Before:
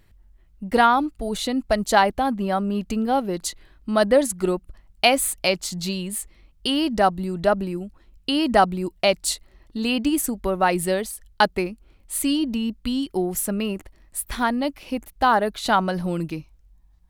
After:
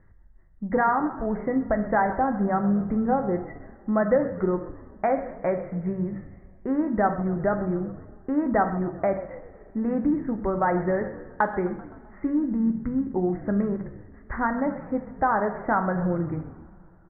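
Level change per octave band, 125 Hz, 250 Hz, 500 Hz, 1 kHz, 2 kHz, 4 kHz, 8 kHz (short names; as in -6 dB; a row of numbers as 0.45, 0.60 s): +1.0 dB, -0.5 dB, -3.0 dB, -4.0 dB, -6.0 dB, under -40 dB, under -40 dB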